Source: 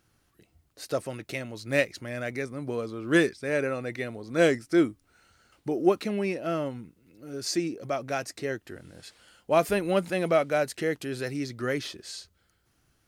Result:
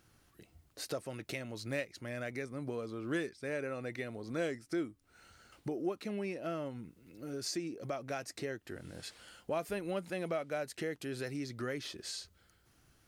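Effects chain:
downward compressor 2.5 to 1, threshold −42 dBFS, peak gain reduction 17 dB
level +1.5 dB

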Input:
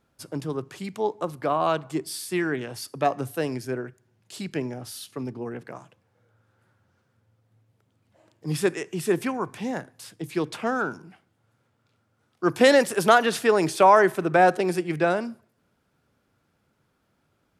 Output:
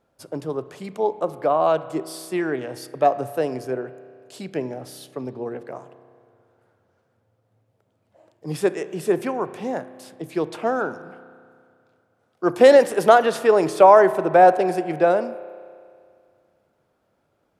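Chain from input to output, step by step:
parametric band 590 Hz +10.5 dB 1.5 octaves
spring reverb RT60 2.2 s, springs 31 ms, chirp 35 ms, DRR 14 dB
level −3.5 dB

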